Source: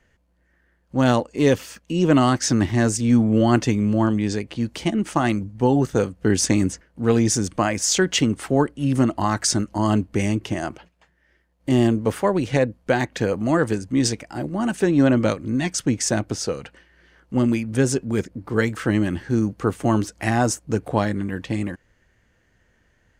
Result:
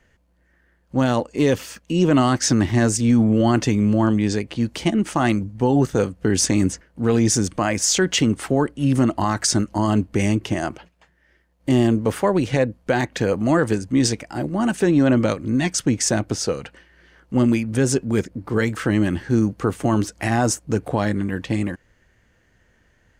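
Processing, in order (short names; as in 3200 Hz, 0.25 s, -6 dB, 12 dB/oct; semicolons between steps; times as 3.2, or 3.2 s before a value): maximiser +9.5 dB; gain -7 dB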